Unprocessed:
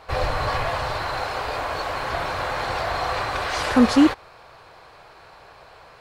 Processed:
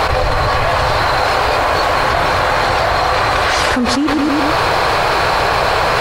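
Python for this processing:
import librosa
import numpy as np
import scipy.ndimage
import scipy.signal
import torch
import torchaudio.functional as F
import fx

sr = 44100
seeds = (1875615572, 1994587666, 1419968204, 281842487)

y = fx.echo_feedback(x, sr, ms=110, feedback_pct=47, wet_db=-19.5)
y = fx.env_flatten(y, sr, amount_pct=100)
y = y * librosa.db_to_amplitude(-3.0)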